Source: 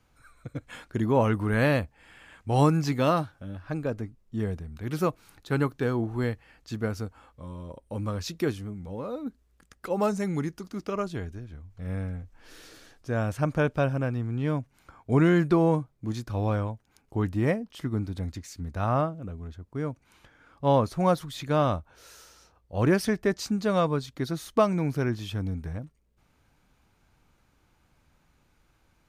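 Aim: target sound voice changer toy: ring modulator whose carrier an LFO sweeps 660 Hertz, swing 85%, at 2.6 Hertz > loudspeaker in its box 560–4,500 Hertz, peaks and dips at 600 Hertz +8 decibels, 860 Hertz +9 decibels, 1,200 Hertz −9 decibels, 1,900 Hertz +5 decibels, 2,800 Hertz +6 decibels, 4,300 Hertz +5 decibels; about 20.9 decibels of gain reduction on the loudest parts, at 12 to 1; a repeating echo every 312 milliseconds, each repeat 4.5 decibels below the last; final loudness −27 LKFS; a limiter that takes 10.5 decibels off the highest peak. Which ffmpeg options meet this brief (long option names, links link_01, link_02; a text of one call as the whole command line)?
ffmpeg -i in.wav -af "acompressor=threshold=-38dB:ratio=12,alimiter=level_in=11.5dB:limit=-24dB:level=0:latency=1,volume=-11.5dB,aecho=1:1:312|624|936|1248|1560|1872|2184|2496|2808:0.596|0.357|0.214|0.129|0.0772|0.0463|0.0278|0.0167|0.01,aeval=exprs='val(0)*sin(2*PI*660*n/s+660*0.85/2.6*sin(2*PI*2.6*n/s))':channel_layout=same,highpass=560,equalizer=frequency=600:width_type=q:width=4:gain=8,equalizer=frequency=860:width_type=q:width=4:gain=9,equalizer=frequency=1200:width_type=q:width=4:gain=-9,equalizer=frequency=1900:width_type=q:width=4:gain=5,equalizer=frequency=2800:width_type=q:width=4:gain=6,equalizer=frequency=4300:width_type=q:width=4:gain=5,lowpass=frequency=4500:width=0.5412,lowpass=frequency=4500:width=1.3066,volume=17.5dB" out.wav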